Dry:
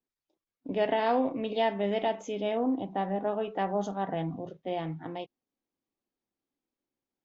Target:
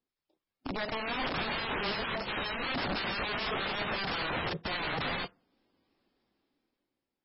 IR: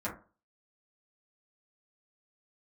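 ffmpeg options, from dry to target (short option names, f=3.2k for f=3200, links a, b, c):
-filter_complex "[0:a]acompressor=threshold=-34dB:ratio=16,alimiter=level_in=7dB:limit=-24dB:level=0:latency=1:release=80,volume=-7dB,dynaudnorm=f=330:g=7:m=15dB,aeval=exprs='(mod(29.9*val(0)+1,2)-1)/29.9':c=same,asplit=2[a][b];[1:a]atrim=start_sample=2205,adelay=20[c];[b][c]afir=irnorm=-1:irlink=0,volume=-27.5dB[d];[a][d]amix=inputs=2:normalize=0,volume=2dB" -ar 16000 -c:a libmp3lame -b:a 16k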